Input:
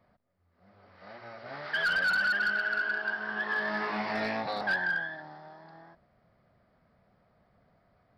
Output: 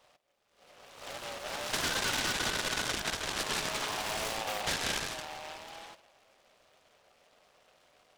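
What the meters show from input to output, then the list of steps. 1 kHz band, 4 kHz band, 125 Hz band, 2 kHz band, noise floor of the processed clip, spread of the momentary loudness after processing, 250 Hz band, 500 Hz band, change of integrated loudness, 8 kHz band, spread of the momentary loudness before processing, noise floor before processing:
−2.0 dB, +7.5 dB, +3.5 dB, −9.0 dB, −70 dBFS, 14 LU, −3.0 dB, −1.0 dB, −3.5 dB, can't be measured, 19 LU, −70 dBFS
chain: high-pass filter 450 Hz 24 dB per octave
notch filter 680 Hz, Q 12
downward compressor 2.5 to 1, threshold −42 dBFS, peak gain reduction 12 dB
tape delay 78 ms, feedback 87%, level −21.5 dB, low-pass 1,900 Hz
short delay modulated by noise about 1,800 Hz, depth 0.16 ms
level +6.5 dB

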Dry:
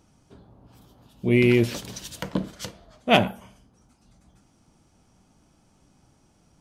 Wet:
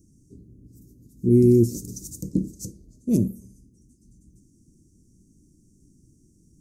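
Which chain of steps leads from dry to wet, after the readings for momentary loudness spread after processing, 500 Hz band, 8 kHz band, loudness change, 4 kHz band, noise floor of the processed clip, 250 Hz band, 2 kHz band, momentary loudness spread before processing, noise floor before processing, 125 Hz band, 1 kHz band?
20 LU, +0.5 dB, +2.5 dB, +1.0 dB, below −20 dB, −60 dBFS, +3.5 dB, below −35 dB, 18 LU, −62 dBFS, +4.0 dB, below −35 dB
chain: elliptic band-stop filter 350–6,500 Hz, stop band 40 dB
level +4.5 dB

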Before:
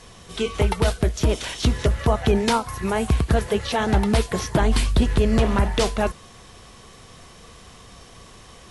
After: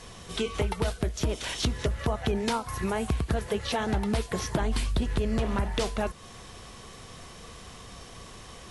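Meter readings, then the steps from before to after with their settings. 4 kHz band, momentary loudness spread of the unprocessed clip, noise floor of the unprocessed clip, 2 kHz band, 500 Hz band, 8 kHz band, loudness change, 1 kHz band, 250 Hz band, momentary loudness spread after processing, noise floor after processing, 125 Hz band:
−5.5 dB, 5 LU, −46 dBFS, −6.5 dB, −7.5 dB, −5.5 dB, −7.5 dB, −7.5 dB, −7.5 dB, 17 LU, −47 dBFS, −8.0 dB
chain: downward compressor 2.5 to 1, threshold −28 dBFS, peak gain reduction 10 dB

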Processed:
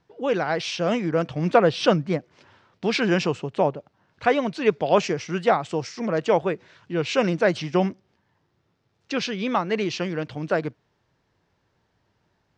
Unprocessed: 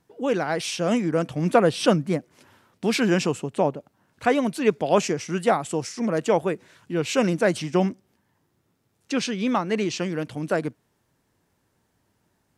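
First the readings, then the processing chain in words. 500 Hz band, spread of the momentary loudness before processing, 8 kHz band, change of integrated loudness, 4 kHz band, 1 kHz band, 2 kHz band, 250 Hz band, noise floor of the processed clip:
+1.0 dB, 8 LU, −6.0 dB, 0.0 dB, +1.0 dB, +1.5 dB, +1.5 dB, −2.0 dB, −71 dBFS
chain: low-pass filter 5,400 Hz 24 dB per octave
parametric band 250 Hz −5.5 dB 0.72 octaves
level +1.5 dB

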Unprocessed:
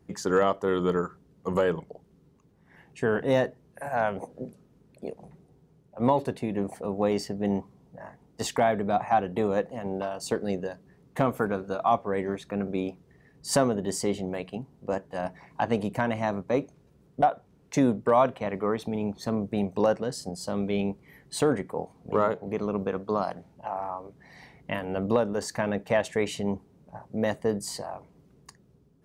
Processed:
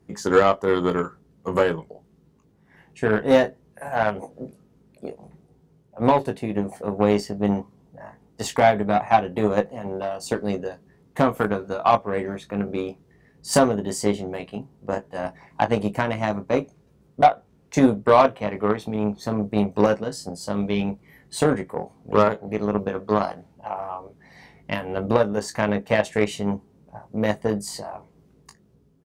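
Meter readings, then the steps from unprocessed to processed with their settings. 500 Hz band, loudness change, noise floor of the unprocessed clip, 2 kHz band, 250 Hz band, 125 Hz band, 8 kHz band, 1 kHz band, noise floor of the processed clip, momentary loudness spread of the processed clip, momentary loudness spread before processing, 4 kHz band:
+5.0 dB, +5.0 dB, −61 dBFS, +6.0 dB, +5.0 dB, +4.5 dB, +2.5 dB, +6.0 dB, −59 dBFS, 15 LU, 14 LU, +4.5 dB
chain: ambience of single reflections 19 ms −6 dB, 34 ms −15.5 dB
harmonic generator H 5 −30 dB, 7 −22 dB, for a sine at −7 dBFS
level +5 dB

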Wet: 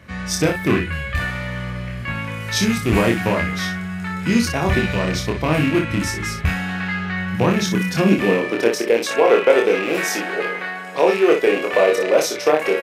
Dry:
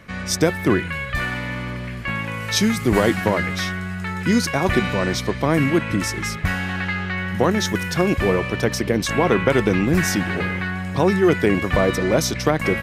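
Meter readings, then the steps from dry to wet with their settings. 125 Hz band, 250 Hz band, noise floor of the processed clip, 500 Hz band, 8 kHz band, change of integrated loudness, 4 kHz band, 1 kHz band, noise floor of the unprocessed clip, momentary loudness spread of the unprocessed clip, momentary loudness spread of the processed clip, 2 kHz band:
−0.5 dB, 0.0 dB, −29 dBFS, +3.5 dB, 0.0 dB, +1.5 dB, +0.5 dB, +1.0 dB, −30 dBFS, 8 LU, 10 LU, +0.5 dB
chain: loose part that buzzes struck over −20 dBFS, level −15 dBFS
ambience of single reflections 26 ms −3 dB, 60 ms −7.5 dB
high-pass filter sweep 62 Hz → 470 Hz, 0:06.89–0:08.94
level −2.5 dB

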